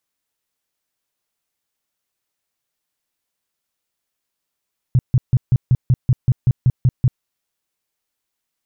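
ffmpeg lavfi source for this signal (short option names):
-f lavfi -i "aevalsrc='0.355*sin(2*PI*126*mod(t,0.19))*lt(mod(t,0.19),5/126)':d=2.28:s=44100"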